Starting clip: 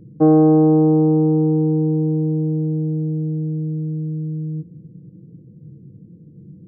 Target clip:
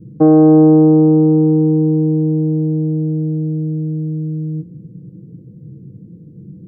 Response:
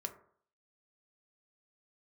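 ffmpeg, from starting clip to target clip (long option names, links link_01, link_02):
-filter_complex "[0:a]asplit=2[link_01][link_02];[1:a]atrim=start_sample=2205,adelay=16[link_03];[link_02][link_03]afir=irnorm=-1:irlink=0,volume=-14dB[link_04];[link_01][link_04]amix=inputs=2:normalize=0,adynamicequalizer=threshold=0.0224:dfrequency=860:dqfactor=1.2:tfrequency=860:tqfactor=1.2:attack=5:release=100:ratio=0.375:range=2:mode=cutabove:tftype=bell,alimiter=level_in=6.5dB:limit=-1dB:release=50:level=0:latency=1,volume=-1dB"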